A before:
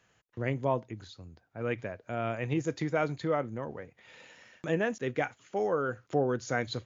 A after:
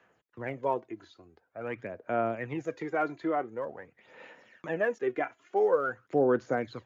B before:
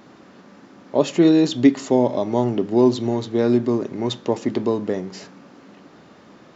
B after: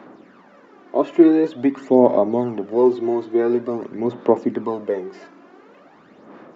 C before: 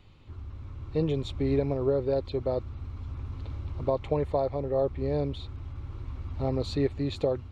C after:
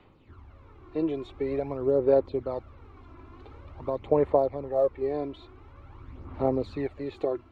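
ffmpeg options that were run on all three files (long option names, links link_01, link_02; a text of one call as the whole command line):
ffmpeg -i in.wav -filter_complex "[0:a]acrossover=split=220 2500:gain=0.178 1 0.251[link_01][link_02][link_03];[link_01][link_02][link_03]amix=inputs=3:normalize=0,acrossover=split=2600[link_04][link_05];[link_05]acompressor=threshold=-53dB:ratio=4:attack=1:release=60[link_06];[link_04][link_06]amix=inputs=2:normalize=0,aphaser=in_gain=1:out_gain=1:delay=3:decay=0.56:speed=0.47:type=sinusoidal" out.wav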